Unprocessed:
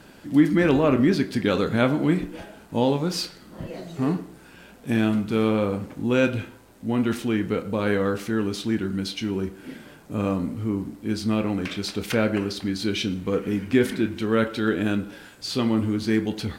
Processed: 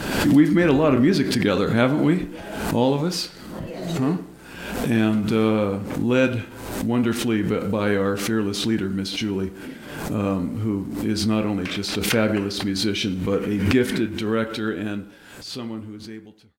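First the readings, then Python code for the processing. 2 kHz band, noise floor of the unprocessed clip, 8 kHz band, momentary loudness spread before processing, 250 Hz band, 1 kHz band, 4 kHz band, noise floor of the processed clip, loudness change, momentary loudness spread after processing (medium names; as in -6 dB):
+2.5 dB, -49 dBFS, +6.0 dB, 13 LU, +2.0 dB, +2.0 dB, +4.0 dB, -42 dBFS, +2.0 dB, 15 LU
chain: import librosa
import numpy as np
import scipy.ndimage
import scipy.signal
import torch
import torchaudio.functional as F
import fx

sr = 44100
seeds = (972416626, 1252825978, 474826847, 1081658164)

y = fx.fade_out_tail(x, sr, length_s=3.26)
y = fx.pre_swell(y, sr, db_per_s=50.0)
y = y * 10.0 ** (1.5 / 20.0)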